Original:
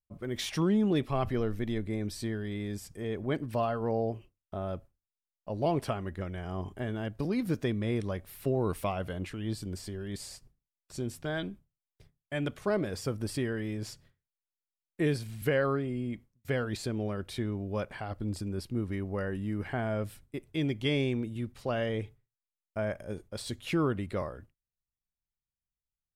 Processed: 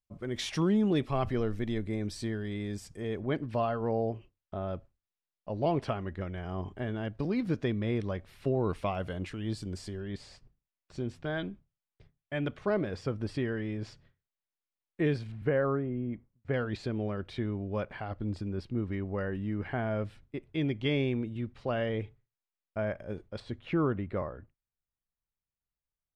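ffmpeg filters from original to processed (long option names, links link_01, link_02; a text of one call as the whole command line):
ffmpeg -i in.wav -af "asetnsamples=nb_out_samples=441:pad=0,asendcmd='3.2 lowpass f 4500;8.95 lowpass f 7500;10 lowpass f 3500;15.32 lowpass f 1500;16.54 lowpass f 3500;23.4 lowpass f 2000',lowpass=8400" out.wav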